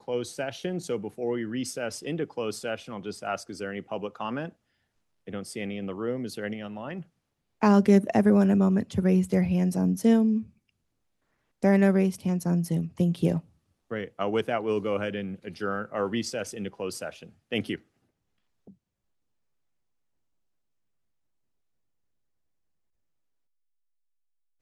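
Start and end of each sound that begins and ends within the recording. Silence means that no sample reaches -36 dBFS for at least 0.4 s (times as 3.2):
5.28–7.02
7.62–10.42
11.63–13.4
13.91–17.76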